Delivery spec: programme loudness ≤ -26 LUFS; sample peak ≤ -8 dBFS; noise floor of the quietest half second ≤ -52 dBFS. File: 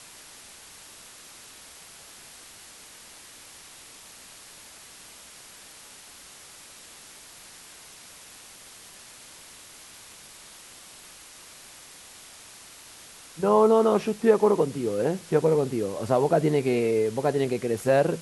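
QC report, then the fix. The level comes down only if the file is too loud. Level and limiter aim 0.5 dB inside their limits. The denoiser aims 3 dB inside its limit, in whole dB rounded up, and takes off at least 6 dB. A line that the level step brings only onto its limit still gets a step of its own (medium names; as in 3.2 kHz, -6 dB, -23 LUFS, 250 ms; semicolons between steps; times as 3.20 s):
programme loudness -23.5 LUFS: fail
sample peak -7.0 dBFS: fail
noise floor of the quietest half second -48 dBFS: fail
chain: noise reduction 6 dB, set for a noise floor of -48 dBFS; trim -3 dB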